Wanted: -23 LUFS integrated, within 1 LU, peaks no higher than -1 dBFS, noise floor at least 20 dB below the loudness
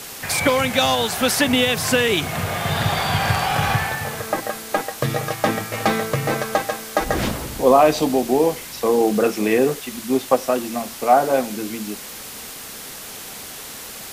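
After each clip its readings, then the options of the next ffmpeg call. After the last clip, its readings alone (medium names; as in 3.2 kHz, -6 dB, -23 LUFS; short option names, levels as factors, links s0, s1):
noise floor -35 dBFS; noise floor target -40 dBFS; loudness -20.0 LUFS; peak level -1.0 dBFS; loudness target -23.0 LUFS
-> -af "afftdn=nr=6:nf=-35"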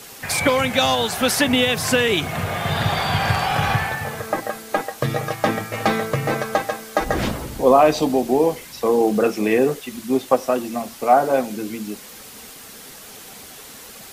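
noise floor -40 dBFS; loudness -20.0 LUFS; peak level -1.5 dBFS; loudness target -23.0 LUFS
-> -af "volume=0.708"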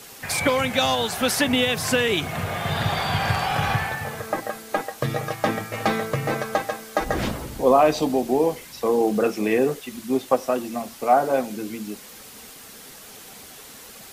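loudness -23.0 LUFS; peak level -4.5 dBFS; noise floor -43 dBFS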